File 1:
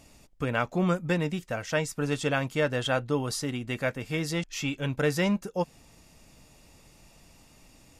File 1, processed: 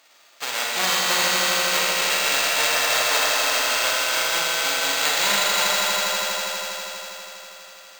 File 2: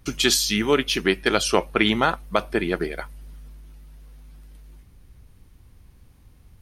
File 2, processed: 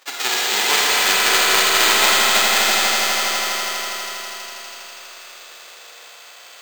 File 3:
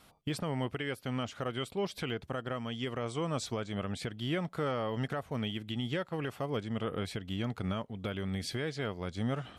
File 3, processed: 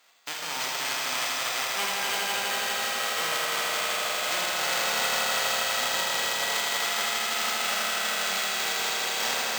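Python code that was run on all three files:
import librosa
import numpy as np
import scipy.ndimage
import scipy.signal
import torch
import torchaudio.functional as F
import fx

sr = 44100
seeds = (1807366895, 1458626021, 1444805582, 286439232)

p1 = fx.envelope_flatten(x, sr, power=0.1)
p2 = scipy.signal.sosfilt(scipy.signal.butter(2, 530.0, 'highpass', fs=sr, output='sos'), p1)
p3 = 10.0 ** (-7.5 / 20.0) * np.tanh(p2 / 10.0 ** (-7.5 / 20.0))
p4 = p3 + fx.echo_swell(p3, sr, ms=81, loudest=5, wet_db=-6.5, dry=0)
p5 = fx.rev_schroeder(p4, sr, rt60_s=2.2, comb_ms=32, drr_db=-2.0)
p6 = np.repeat(scipy.signal.resample_poly(p5, 1, 4), 4)[:len(p5)]
y = F.gain(torch.from_numpy(p6), 3.5).numpy()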